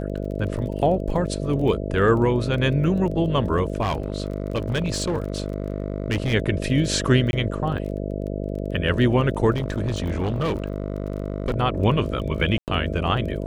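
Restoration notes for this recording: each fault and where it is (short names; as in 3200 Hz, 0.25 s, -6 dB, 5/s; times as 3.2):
buzz 50 Hz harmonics 13 -28 dBFS
crackle 20/s -32 dBFS
3.81–6.34 clipped -19 dBFS
7.31–7.33 gap 21 ms
9.51–11.54 clipped -19.5 dBFS
12.58–12.68 gap 98 ms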